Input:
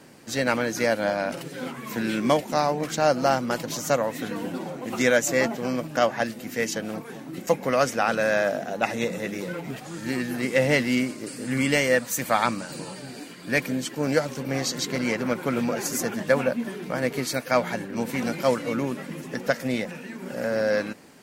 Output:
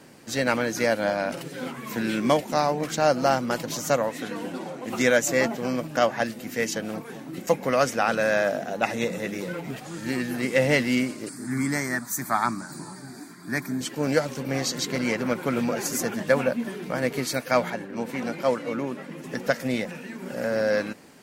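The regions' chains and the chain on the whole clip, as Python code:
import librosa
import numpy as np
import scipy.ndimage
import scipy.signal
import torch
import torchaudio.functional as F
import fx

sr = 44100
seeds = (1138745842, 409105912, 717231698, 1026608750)

y = fx.chain(x, sr, fx.lowpass(hz=12000.0, slope=12),
    fx.low_shelf(hz=150.0, db=-9.0), at=(4.09, 4.88))
y = fx.chain(y, sr, fx.highpass(hz=92.0, slope=12),
    fx.peak_eq(hz=390.0, db=7.0, octaves=0.84),
    fx.fixed_phaser(hz=1200.0, stages=4), at=(11.29, 13.81))
y = fx.chain(y, sr, fx.highpass(hz=570.0, slope=6),
    fx.tilt_eq(slope=-2.5), at=(17.7, 19.24))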